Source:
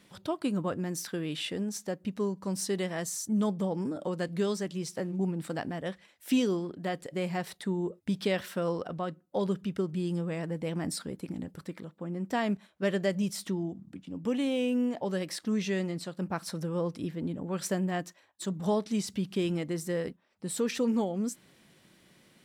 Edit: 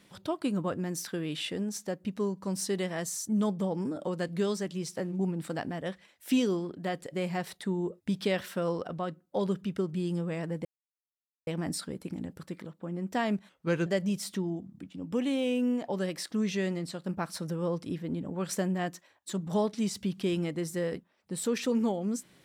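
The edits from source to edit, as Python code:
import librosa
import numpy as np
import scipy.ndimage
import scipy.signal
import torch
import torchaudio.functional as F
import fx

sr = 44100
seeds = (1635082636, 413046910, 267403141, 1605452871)

y = fx.edit(x, sr, fx.insert_silence(at_s=10.65, length_s=0.82),
    fx.speed_span(start_s=12.67, length_s=0.32, speed=0.86), tone=tone)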